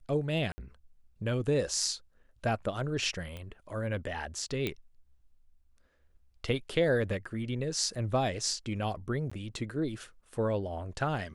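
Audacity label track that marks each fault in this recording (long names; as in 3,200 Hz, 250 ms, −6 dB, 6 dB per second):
0.520000	0.580000	drop-out 60 ms
3.370000	3.370000	click −28 dBFS
4.670000	4.670000	click −18 dBFS
7.950000	7.960000	drop-out 5.1 ms
9.300000	9.310000	drop-out 15 ms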